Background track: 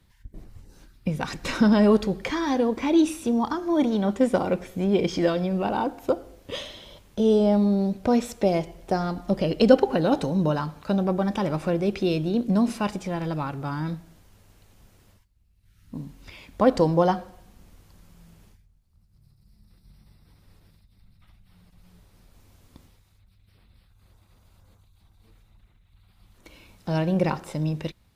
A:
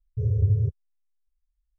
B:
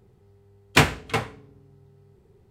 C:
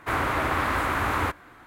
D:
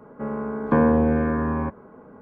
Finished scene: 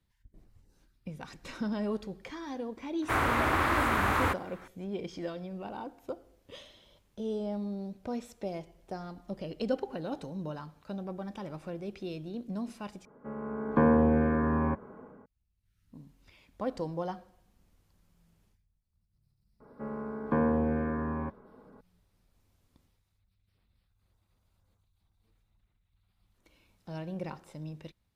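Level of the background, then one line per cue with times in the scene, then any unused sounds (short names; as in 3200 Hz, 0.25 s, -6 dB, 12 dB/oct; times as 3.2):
background track -15 dB
3.02 add C -2 dB
13.05 replace with D -11.5 dB + AGC
19.6 add D -9 dB
not used: A, B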